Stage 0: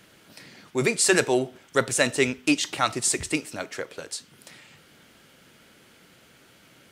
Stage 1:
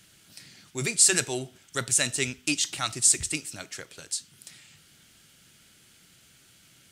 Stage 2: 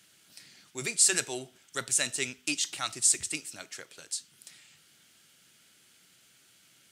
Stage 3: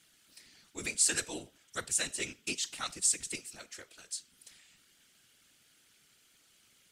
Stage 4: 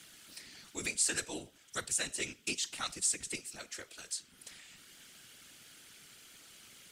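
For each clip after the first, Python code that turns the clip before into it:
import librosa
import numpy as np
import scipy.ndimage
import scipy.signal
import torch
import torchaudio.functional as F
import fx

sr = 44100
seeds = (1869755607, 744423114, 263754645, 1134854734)

y1 = fx.graphic_eq(x, sr, hz=(250, 500, 1000, 2000, 8000), db=(-6, -11, -8, -4, 5))
y2 = fx.highpass(y1, sr, hz=290.0, slope=6)
y2 = y2 * 10.0 ** (-3.5 / 20.0)
y3 = fx.whisperise(y2, sr, seeds[0])
y3 = y3 * 10.0 ** (-4.5 / 20.0)
y4 = fx.band_squash(y3, sr, depth_pct=40)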